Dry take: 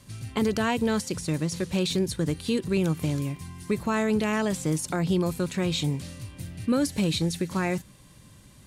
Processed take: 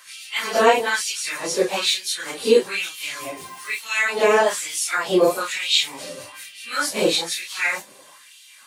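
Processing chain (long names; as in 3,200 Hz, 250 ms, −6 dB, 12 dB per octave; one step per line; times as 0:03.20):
random phases in long frames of 100 ms
0:03.37–0:03.81: bit-depth reduction 10 bits, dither triangular
auto-filter high-pass sine 1.1 Hz 460–3,100 Hz
level +9 dB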